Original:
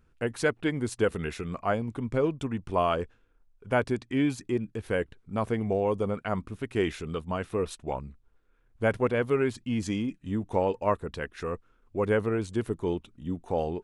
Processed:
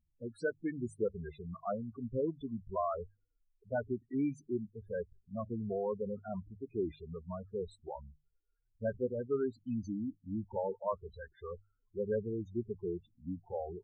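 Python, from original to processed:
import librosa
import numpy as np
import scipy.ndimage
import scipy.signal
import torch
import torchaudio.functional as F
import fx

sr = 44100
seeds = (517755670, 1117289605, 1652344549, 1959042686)

y = fx.noise_reduce_blind(x, sr, reduce_db=7)
y = fx.spec_topn(y, sr, count=8)
y = fx.hum_notches(y, sr, base_hz=50, count=3)
y = F.gain(torch.from_numpy(y), -7.0).numpy()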